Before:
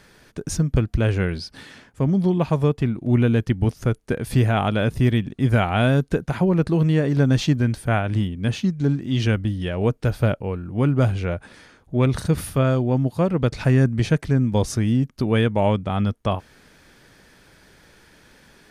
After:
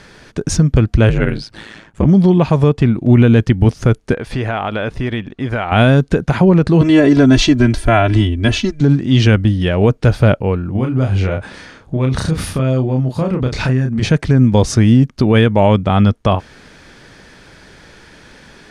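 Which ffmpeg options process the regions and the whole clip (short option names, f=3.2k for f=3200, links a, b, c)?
-filter_complex "[0:a]asettb=1/sr,asplit=3[a][b][c];[a]atrim=end=1.094[d];[b]atrim=start=1.09:end=2.05,asetpts=PTS-STARTPTS,afade=t=in:d=0.004:c=qsin,afade=t=out:st=0.956:d=0.004:c=qsin,equalizer=f=5.1k:t=o:w=0.44:g=-6,aeval=exprs='val(0)*sin(2*PI*55*n/s)':c=same[e];[c]atrim=start=2.046[f];[d][e]acrossfade=d=0.004:c1=hsin:c2=qsin[g];[g][f]acrossfade=d=0.004:c1=qsin:c2=hsin,asettb=1/sr,asplit=3[h][i][j];[h]atrim=end=4.144[k];[i]atrim=start=4.14:end=5.72,asetpts=PTS-STARTPTS,afade=t=in:d=0.004:c=qsin,afade=t=out:st=1.576:d=0.004:c=qsin,equalizer=f=130:t=o:w=2.9:g=-12,acompressor=threshold=-25dB:ratio=4:attack=3.2:release=140:knee=1:detection=peak,lowpass=f=2.3k:p=1[l];[j]atrim=start=5.716[m];[k][l]acrossfade=d=0.004:c1=hsin:c2=qsin[n];[n][m]acrossfade=d=0.004:c1=qsin:c2=hsin,asettb=1/sr,asplit=3[o][p][q];[o]atrim=end=6.814[r];[p]atrim=start=6.81:end=8.81,asetpts=PTS-STARTPTS,afade=t=in:d=0.004:c=qsin,afade=t=out:st=1.996:d=0.004:c=qsin,aecho=1:1:3:0.91,atrim=end_sample=88200,asubboost=boost=10.5:cutoff=53[s];[q]atrim=start=8.806[t];[r][s]acrossfade=d=0.004:c1=hsin:c2=qsin[u];[u][t]acrossfade=d=0.004:c1=qsin:c2=hsin,asettb=1/sr,asplit=3[v][w][x];[v]atrim=end=10.724[y];[w]atrim=start=10.72:end=14.03,asetpts=PTS-STARTPTS,afade=t=in:d=0.004:c=qsin,afade=t=out:st=3.306:d=0.004:c=qsin,acompressor=threshold=-24dB:ratio=10:attack=3.2:release=140:knee=1:detection=peak,asplit=2[z][aa];[aa]adelay=31,volume=-4dB[ab];[z][ab]amix=inputs=2:normalize=0,atrim=end_sample=145971[ac];[x]atrim=start=14.026[ad];[y][ac]acrossfade=d=0.004:c1=hsin:c2=qsin[ae];[ae][ad]acrossfade=d=0.004:c1=qsin:c2=hsin,lowpass=7.4k,alimiter=level_in=11.5dB:limit=-1dB:release=50:level=0:latency=1,volume=-1dB"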